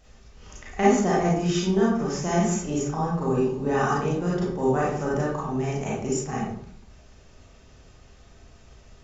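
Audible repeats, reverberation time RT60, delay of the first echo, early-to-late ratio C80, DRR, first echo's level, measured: none, 0.60 s, none, 5.5 dB, -6.5 dB, none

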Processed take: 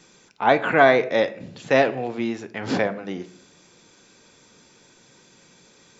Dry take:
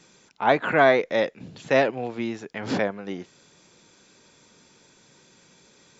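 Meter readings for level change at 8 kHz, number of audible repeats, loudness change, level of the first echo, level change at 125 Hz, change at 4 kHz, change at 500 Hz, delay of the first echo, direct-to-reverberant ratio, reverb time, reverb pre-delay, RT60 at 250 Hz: n/a, none, +2.5 dB, none, +2.0 dB, +2.0 dB, +2.0 dB, none, 10.5 dB, 0.60 s, 3 ms, 0.90 s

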